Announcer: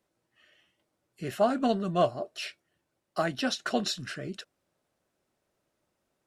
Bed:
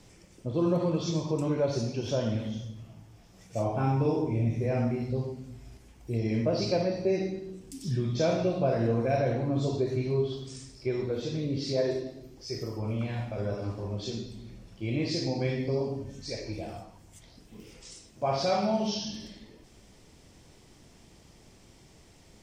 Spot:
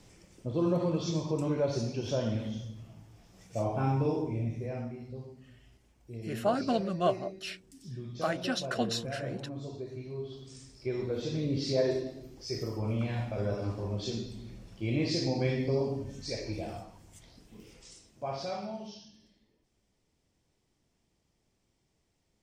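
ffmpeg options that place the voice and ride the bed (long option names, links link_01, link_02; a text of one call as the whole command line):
ffmpeg -i stem1.wav -i stem2.wav -filter_complex "[0:a]adelay=5050,volume=-3dB[link_01];[1:a]volume=10dB,afade=type=out:start_time=3.95:duration=0.98:silence=0.316228,afade=type=in:start_time=10.15:duration=1.34:silence=0.251189,afade=type=out:start_time=16.71:duration=2.4:silence=0.1[link_02];[link_01][link_02]amix=inputs=2:normalize=0" out.wav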